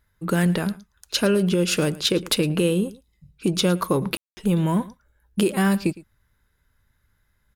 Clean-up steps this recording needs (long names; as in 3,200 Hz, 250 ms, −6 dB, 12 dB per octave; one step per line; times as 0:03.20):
ambience match 0:04.17–0:04.37
echo removal 110 ms −20 dB